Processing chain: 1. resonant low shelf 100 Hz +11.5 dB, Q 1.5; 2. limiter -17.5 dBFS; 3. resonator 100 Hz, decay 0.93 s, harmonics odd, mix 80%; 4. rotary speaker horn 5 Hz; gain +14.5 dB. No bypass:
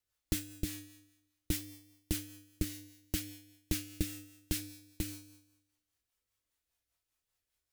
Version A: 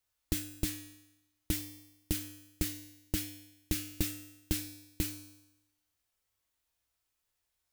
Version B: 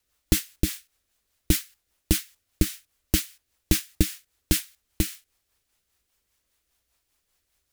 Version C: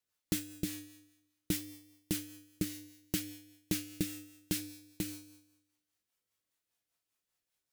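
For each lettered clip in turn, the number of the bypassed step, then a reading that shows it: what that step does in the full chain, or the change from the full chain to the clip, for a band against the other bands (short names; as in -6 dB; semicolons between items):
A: 4, 1 kHz band +1.5 dB; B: 3, loudness change +12.5 LU; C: 1, 125 Hz band -2.5 dB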